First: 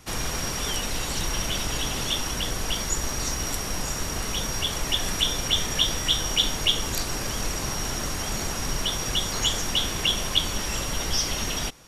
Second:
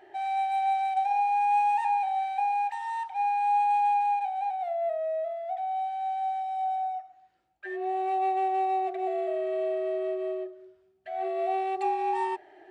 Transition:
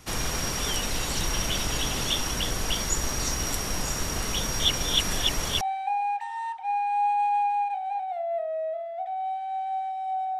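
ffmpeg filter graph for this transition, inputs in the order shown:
-filter_complex "[0:a]apad=whole_dur=10.39,atrim=end=10.39,asplit=2[a][b];[a]atrim=end=4.602[c];[b]atrim=start=4.598:end=5.612,asetpts=PTS-STARTPTS,areverse[d];[1:a]atrim=start=2.118:end=6.9[e];[c][d]acrossfade=d=0.004:c1=hsin:c2=hsin[f];[f][e]acrossfade=d=0.004:c1=hsin:c2=hsin"

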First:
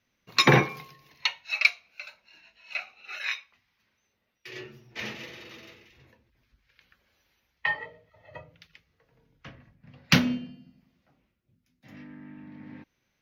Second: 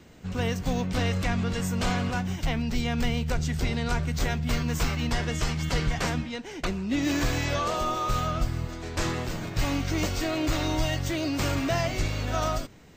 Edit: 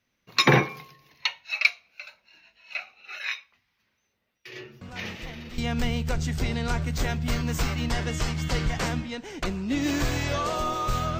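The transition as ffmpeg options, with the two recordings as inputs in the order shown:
-filter_complex "[1:a]asplit=2[a][b];[0:a]apad=whole_dur=11.19,atrim=end=11.19,atrim=end=5.582[c];[b]atrim=start=2.788:end=8.4[d];[a]atrim=start=2.02:end=2.79,asetpts=PTS-STARTPTS,volume=-13dB,afade=t=in:d=0.004:c=hsin,afade=t=out:st=0.766:d=0.004:c=hsin,adelay=212121S[e];[c][d]acrossfade=d=0.004:c1=hsin:c2=hsin[f];[f][e]amix=inputs=2:normalize=0"

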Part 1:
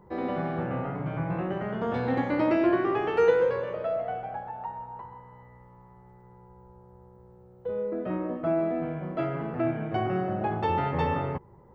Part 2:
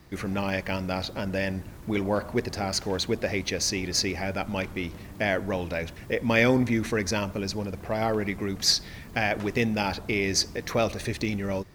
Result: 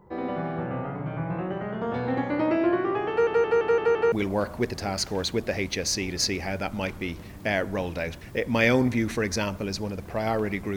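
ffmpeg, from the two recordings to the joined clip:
-filter_complex "[0:a]apad=whole_dur=10.76,atrim=end=10.76,asplit=6[a][b][c][d][e][f];[a]atrim=end=3.272[g];[b]atrim=start=3.098:end=3.272[h];[c]atrim=start=3.098:end=3.272[i];[d]atrim=start=3.098:end=3.272[j];[e]atrim=start=3.098:end=3.272[k];[f]atrim=start=3.098:end=3.272[l];[1:a]atrim=start=1.868:end=8.51[m];[g][h]acrossfade=d=0.004:c1=hsin:c2=hsin[n];[n][i]acrossfade=d=0.004:c1=hsin:c2=hsin[o];[o][j]acrossfade=d=0.004:c1=hsin:c2=hsin[p];[p][k]acrossfade=d=0.004:c1=hsin:c2=hsin[q];[q][l]acrossfade=d=0.004:c1=hsin:c2=hsin[r];[r][m]acrossfade=d=0.004:c1=hsin:c2=hsin"

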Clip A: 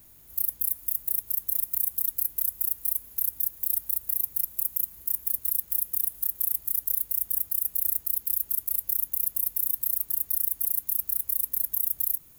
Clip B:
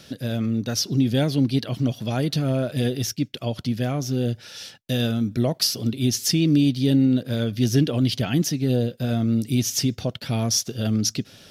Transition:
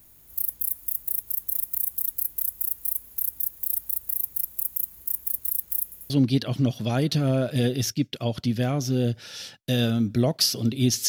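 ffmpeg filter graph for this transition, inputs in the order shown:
-filter_complex "[0:a]apad=whole_dur=11.08,atrim=end=11.08,asplit=3[a][b][c];[a]atrim=end=5.922[d];[b]atrim=start=5.828:end=5.922[e];[c]atrim=start=5.828:end=5.922[f];[1:a]atrim=start=1.308:end=6.29[g];[d][e]acrossfade=d=0.004:c1=hsin:c2=hsin[h];[h][f]acrossfade=d=0.004:c1=hsin:c2=hsin[i];[i][g]acrossfade=d=0.004:c1=hsin:c2=hsin"

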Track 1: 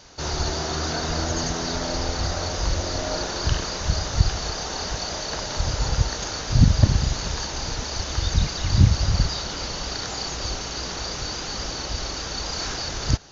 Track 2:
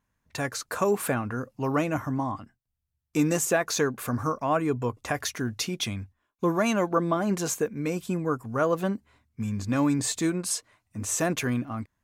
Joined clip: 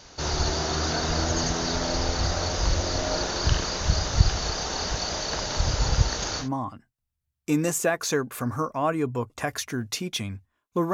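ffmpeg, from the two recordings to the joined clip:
-filter_complex "[0:a]apad=whole_dur=10.93,atrim=end=10.93,atrim=end=6.49,asetpts=PTS-STARTPTS[a];[1:a]atrim=start=2.04:end=6.6,asetpts=PTS-STARTPTS[b];[a][b]acrossfade=d=0.12:c1=tri:c2=tri"

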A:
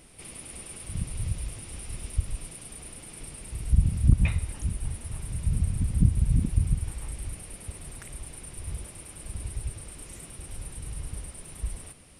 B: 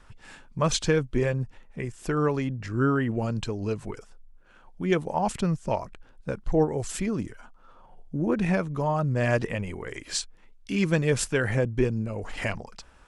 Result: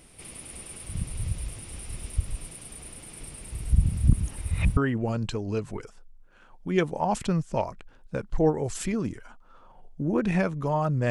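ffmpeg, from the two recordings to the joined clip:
-filter_complex "[0:a]apad=whole_dur=11.1,atrim=end=11.1,asplit=2[a][b];[a]atrim=end=4.132[c];[b]atrim=start=4.128:end=4.772,asetpts=PTS-STARTPTS,areverse[d];[1:a]atrim=start=2.908:end=9.24[e];[c][d]acrossfade=d=0.004:c1=hsin:c2=hsin[f];[f][e]acrossfade=d=0.004:c1=hsin:c2=hsin"

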